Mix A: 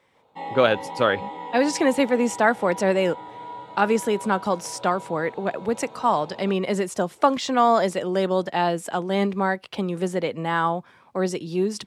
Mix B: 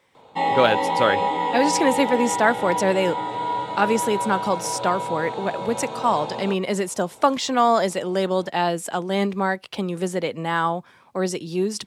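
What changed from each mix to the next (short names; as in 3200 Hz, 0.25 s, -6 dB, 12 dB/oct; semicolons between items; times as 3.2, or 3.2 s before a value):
background +11.5 dB; master: add high shelf 4000 Hz +6 dB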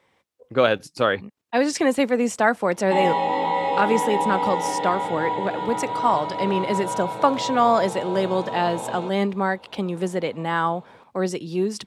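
background: entry +2.55 s; master: add high shelf 4000 Hz -6 dB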